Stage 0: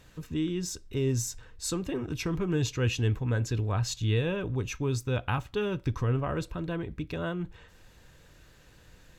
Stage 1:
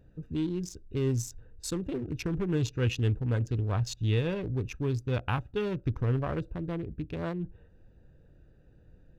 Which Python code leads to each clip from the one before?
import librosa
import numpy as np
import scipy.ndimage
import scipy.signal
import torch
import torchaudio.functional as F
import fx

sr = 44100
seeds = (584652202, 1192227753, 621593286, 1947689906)

y = fx.wiener(x, sr, points=41)
y = fx.peak_eq(y, sr, hz=7400.0, db=-3.0, octaves=0.25)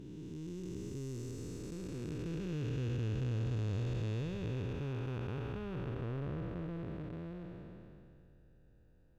y = fx.spec_blur(x, sr, span_ms=999.0)
y = y * librosa.db_to_amplitude(-4.0)